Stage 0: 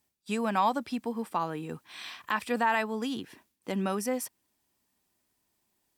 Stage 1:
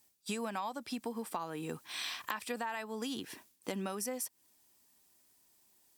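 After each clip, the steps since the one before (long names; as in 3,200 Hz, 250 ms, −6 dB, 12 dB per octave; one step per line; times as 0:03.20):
bass and treble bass −4 dB, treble +7 dB
downward compressor 10 to 1, threshold −37 dBFS, peak gain reduction 16 dB
level +2.5 dB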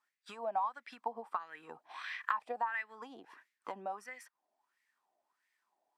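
transient designer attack +5 dB, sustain −1 dB
LFO wah 1.5 Hz 670–2,000 Hz, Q 6.2
level +9 dB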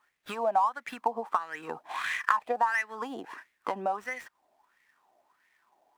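running median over 9 samples
in parallel at +1.5 dB: downward compressor, threshold −45 dBFS, peak gain reduction 17 dB
on the sum: level +7 dB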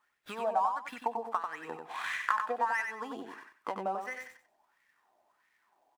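repeating echo 93 ms, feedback 23%, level −5.5 dB
level −4.5 dB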